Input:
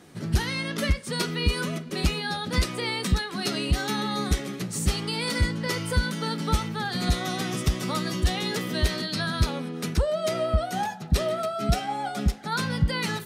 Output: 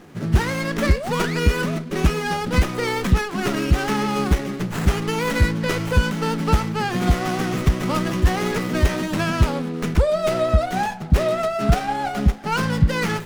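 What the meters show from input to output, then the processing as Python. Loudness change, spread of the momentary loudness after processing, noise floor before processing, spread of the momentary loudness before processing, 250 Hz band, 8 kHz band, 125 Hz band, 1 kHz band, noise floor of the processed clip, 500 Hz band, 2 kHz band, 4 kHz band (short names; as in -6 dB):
+5.5 dB, 3 LU, -38 dBFS, 3 LU, +6.5 dB, +0.5 dB, +6.5 dB, +6.5 dB, -30 dBFS, +7.0 dB, +5.0 dB, -1.0 dB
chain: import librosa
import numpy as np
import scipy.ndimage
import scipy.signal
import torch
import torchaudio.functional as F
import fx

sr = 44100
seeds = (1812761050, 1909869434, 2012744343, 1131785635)

y = fx.spec_paint(x, sr, seeds[0], shape='rise', start_s=0.82, length_s=0.56, low_hz=260.0, high_hz=2700.0, level_db=-36.0)
y = fx.running_max(y, sr, window=9)
y = F.gain(torch.from_numpy(y), 6.5).numpy()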